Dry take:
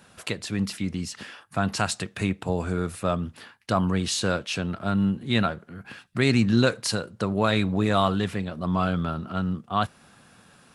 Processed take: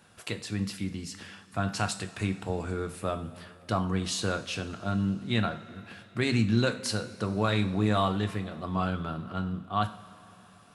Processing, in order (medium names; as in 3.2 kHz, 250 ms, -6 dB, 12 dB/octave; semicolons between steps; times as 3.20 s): two-slope reverb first 0.44 s, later 3.8 s, from -17 dB, DRR 7.5 dB; trim -5.5 dB